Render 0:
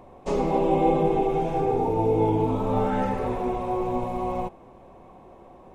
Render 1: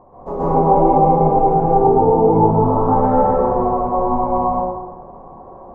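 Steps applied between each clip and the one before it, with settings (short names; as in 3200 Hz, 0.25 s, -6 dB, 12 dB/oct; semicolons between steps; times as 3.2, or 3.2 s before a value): EQ curve 300 Hz 0 dB, 1100 Hz +6 dB, 2500 Hz -22 dB; plate-style reverb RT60 1.1 s, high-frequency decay 0.5×, pre-delay 0.115 s, DRR -8.5 dB; gain -2 dB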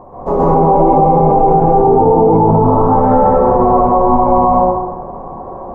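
maximiser +11.5 dB; gain -1 dB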